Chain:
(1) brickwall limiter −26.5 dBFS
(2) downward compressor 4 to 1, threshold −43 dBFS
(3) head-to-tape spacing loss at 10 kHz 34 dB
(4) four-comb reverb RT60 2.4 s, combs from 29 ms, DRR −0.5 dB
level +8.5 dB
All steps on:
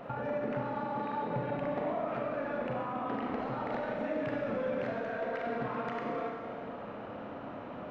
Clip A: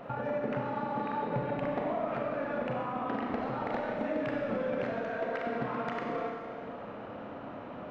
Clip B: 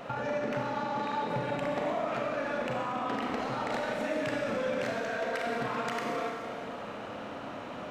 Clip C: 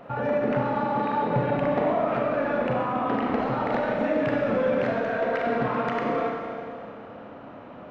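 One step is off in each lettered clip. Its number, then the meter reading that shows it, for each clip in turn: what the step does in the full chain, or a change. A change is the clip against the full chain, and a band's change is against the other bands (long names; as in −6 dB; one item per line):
1, average gain reduction 5.0 dB
3, 4 kHz band +9.5 dB
2, average gain reduction 7.5 dB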